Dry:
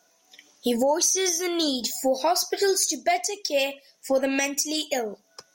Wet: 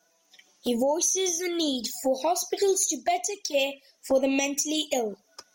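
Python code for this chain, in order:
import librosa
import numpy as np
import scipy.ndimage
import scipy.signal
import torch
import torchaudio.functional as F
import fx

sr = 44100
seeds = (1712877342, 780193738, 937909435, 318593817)

y = fx.rider(x, sr, range_db=10, speed_s=2.0)
y = fx.env_flanger(y, sr, rest_ms=6.2, full_db=-22.0)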